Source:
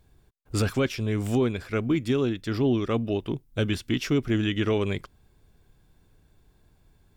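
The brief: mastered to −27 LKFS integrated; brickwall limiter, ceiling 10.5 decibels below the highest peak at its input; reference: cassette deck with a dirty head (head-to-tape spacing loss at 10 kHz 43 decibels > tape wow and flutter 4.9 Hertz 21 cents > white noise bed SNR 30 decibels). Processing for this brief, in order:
brickwall limiter −26.5 dBFS
head-to-tape spacing loss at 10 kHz 43 dB
tape wow and flutter 4.9 Hz 21 cents
white noise bed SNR 30 dB
level +9.5 dB

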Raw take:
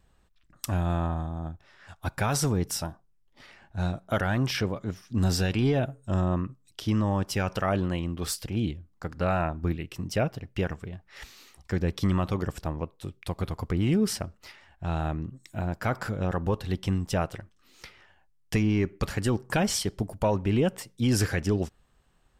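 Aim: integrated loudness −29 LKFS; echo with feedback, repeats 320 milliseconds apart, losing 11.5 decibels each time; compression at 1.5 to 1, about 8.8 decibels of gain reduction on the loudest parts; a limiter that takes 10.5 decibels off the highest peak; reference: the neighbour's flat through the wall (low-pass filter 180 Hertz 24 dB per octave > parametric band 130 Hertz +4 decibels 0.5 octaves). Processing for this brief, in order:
downward compressor 1.5 to 1, threshold −46 dBFS
brickwall limiter −31.5 dBFS
low-pass filter 180 Hz 24 dB per octave
parametric band 130 Hz +4 dB 0.5 octaves
repeating echo 320 ms, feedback 27%, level −11.5 dB
level +15.5 dB

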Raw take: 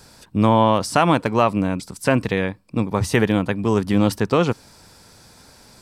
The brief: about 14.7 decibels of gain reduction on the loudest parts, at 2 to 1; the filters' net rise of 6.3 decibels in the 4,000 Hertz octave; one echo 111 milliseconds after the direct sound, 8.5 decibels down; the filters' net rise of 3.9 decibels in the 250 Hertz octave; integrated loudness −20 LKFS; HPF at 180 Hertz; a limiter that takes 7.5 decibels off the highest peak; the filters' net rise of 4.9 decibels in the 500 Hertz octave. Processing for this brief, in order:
high-pass filter 180 Hz
parametric band 250 Hz +5.5 dB
parametric band 500 Hz +4.5 dB
parametric band 4,000 Hz +8.5 dB
downward compressor 2 to 1, threshold −36 dBFS
brickwall limiter −19 dBFS
single-tap delay 111 ms −8.5 dB
level +11.5 dB

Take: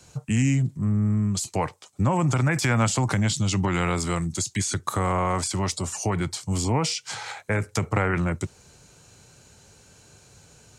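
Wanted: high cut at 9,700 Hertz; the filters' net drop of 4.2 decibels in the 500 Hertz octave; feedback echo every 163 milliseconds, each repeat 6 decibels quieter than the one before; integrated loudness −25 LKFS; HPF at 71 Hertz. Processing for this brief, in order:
high-pass filter 71 Hz
low-pass filter 9,700 Hz
parametric band 500 Hz −5.5 dB
repeating echo 163 ms, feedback 50%, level −6 dB
level −0.5 dB

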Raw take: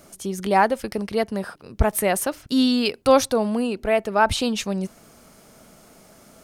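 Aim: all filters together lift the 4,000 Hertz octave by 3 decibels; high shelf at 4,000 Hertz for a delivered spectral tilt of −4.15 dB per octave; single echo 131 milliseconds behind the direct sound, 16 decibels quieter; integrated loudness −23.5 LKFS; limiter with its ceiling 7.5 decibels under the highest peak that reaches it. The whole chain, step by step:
high-shelf EQ 4,000 Hz −5 dB
parametric band 4,000 Hz +6.5 dB
brickwall limiter −11.5 dBFS
single-tap delay 131 ms −16 dB
level +0.5 dB

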